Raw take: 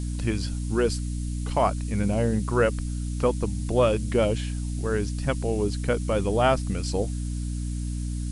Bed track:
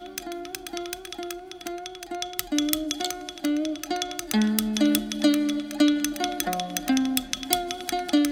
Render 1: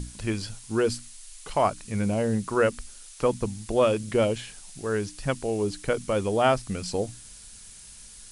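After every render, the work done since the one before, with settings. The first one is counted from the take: hum notches 60/120/180/240/300 Hz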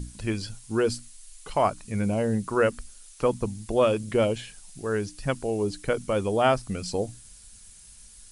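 noise reduction 6 dB, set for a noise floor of -47 dBFS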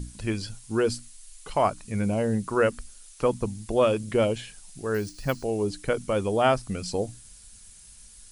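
4.94–5.44 s: careless resampling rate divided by 3×, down none, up hold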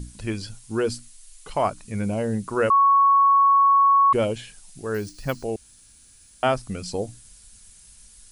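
2.70–4.13 s: bleep 1.11 kHz -13 dBFS; 5.56–6.43 s: room tone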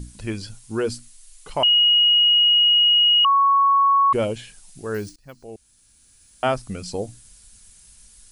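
1.63–3.25 s: bleep 2.89 kHz -12.5 dBFS; 5.16–6.48 s: fade in, from -24 dB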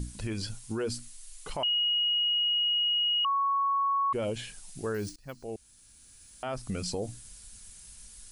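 compression, threshold -24 dBFS, peak gain reduction 9 dB; peak limiter -24 dBFS, peak gain reduction 11.5 dB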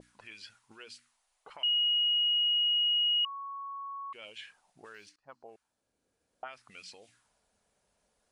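auto-wah 440–2700 Hz, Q 2.3, up, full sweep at -30 dBFS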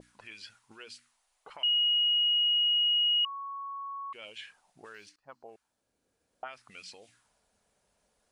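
trim +1.5 dB

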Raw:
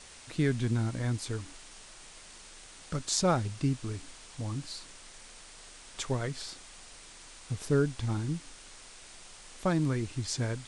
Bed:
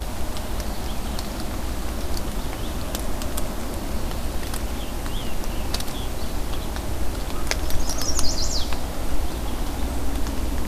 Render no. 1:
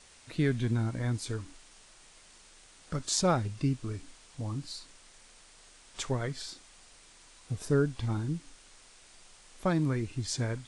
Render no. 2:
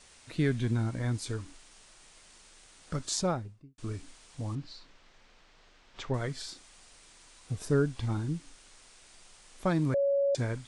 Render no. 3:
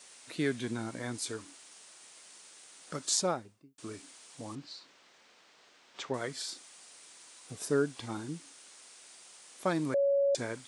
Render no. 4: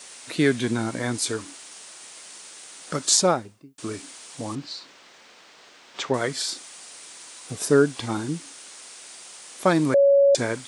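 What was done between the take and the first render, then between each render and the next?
noise print and reduce 6 dB
2.99–3.78 s: studio fade out; 4.55–6.14 s: distance through air 180 m; 9.94–10.35 s: bleep 559 Hz -23.5 dBFS
high-pass 260 Hz 12 dB/octave; treble shelf 6.9 kHz +8 dB
trim +11 dB; peak limiter -2 dBFS, peak gain reduction 1.5 dB

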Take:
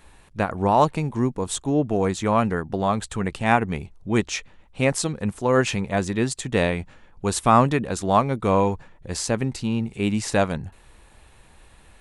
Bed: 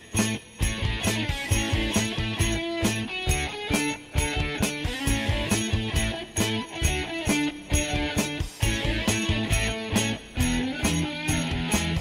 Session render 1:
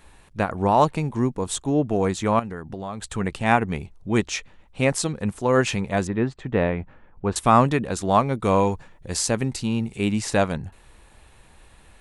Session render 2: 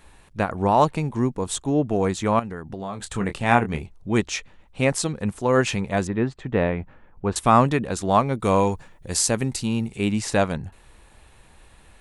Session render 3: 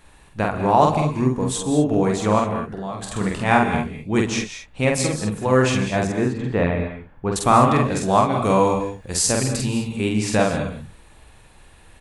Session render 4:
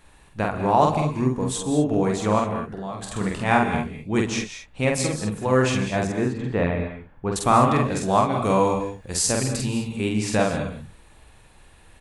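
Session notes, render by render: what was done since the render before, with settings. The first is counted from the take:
2.39–3.04 s: compression 3:1, threshold -31 dBFS; 6.07–7.36 s: low-pass 1.8 kHz; 8.42–10.05 s: treble shelf 4.9 kHz +6 dB
2.77–3.83 s: doubling 25 ms -8 dB; 8.39–9.88 s: treble shelf 8.1 kHz +8 dB
doubling 47 ms -2.5 dB; gated-style reverb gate 230 ms rising, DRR 7.5 dB
trim -2.5 dB

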